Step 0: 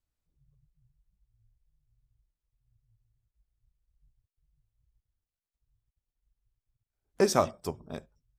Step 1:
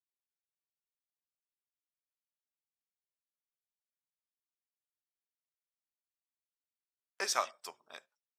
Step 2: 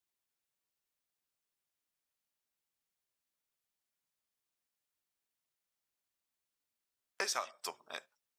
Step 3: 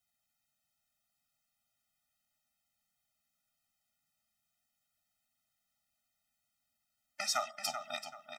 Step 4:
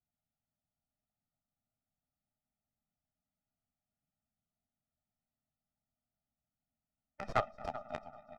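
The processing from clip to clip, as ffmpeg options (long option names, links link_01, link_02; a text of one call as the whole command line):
ffmpeg -i in.wav -af "agate=range=-17dB:threshold=-58dB:ratio=16:detection=peak,highpass=1400,highshelf=frequency=8300:gain=-9,volume=2dB" out.wav
ffmpeg -i in.wav -af "acompressor=threshold=-39dB:ratio=6,volume=6dB" out.wav
ffmpeg -i in.wav -filter_complex "[0:a]alimiter=level_in=1dB:limit=-24dB:level=0:latency=1:release=177,volume=-1dB,asplit=2[link_01][link_02];[link_02]adelay=384,lowpass=frequency=4500:poles=1,volume=-7.5dB,asplit=2[link_03][link_04];[link_04]adelay=384,lowpass=frequency=4500:poles=1,volume=0.31,asplit=2[link_05][link_06];[link_06]adelay=384,lowpass=frequency=4500:poles=1,volume=0.31,asplit=2[link_07][link_08];[link_08]adelay=384,lowpass=frequency=4500:poles=1,volume=0.31[link_09];[link_01][link_03][link_05][link_07][link_09]amix=inputs=5:normalize=0,afftfilt=real='re*eq(mod(floor(b*sr/1024/300),2),0)':imag='im*eq(mod(floor(b*sr/1024/300),2),0)':win_size=1024:overlap=0.75,volume=8.5dB" out.wav
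ffmpeg -i in.wav -af "aecho=1:1:244|488|732|976|1220:0.237|0.126|0.0666|0.0353|0.0187,aeval=exprs='0.106*(cos(1*acos(clip(val(0)/0.106,-1,1)))-cos(1*PI/2))+0.00944*(cos(3*acos(clip(val(0)/0.106,-1,1)))-cos(3*PI/2))+0.0266*(cos(6*acos(clip(val(0)/0.106,-1,1)))-cos(6*PI/2))+0.00188*(cos(7*acos(clip(val(0)/0.106,-1,1)))-cos(7*PI/2))+0.0188*(cos(8*acos(clip(val(0)/0.106,-1,1)))-cos(8*PI/2))':channel_layout=same,adynamicsmooth=sensitivity=1:basefreq=610,volume=8dB" out.wav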